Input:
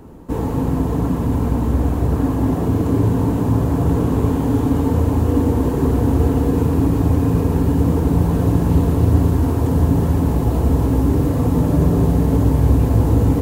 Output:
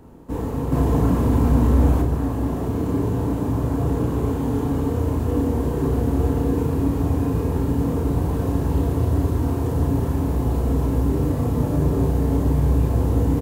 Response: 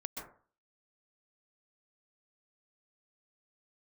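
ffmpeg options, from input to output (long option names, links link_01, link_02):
-filter_complex "[0:a]asettb=1/sr,asplit=3[link_01][link_02][link_03];[link_01]atrim=end=0.724[link_04];[link_02]atrim=start=0.72:end=2.02,asetpts=PTS-STARTPTS,afade=type=in:duration=0.004:curve=qsin,afade=type=out:start_time=1.296:duration=0.004:curve=qsin,acontrast=58[link_05];[link_03]atrim=start=2.016[link_06];[link_04][link_05]acrossfade=duration=0.004:curve1=hsin:curve2=qsin[link_07];[link_07][link_06]acrossfade=duration=0.004:curve1=qsin:curve2=hsin,asplit=2[link_08][link_09];[link_09]adelay=33,volume=-4dB[link_10];[link_08][link_10]amix=inputs=2:normalize=0,volume=-6dB"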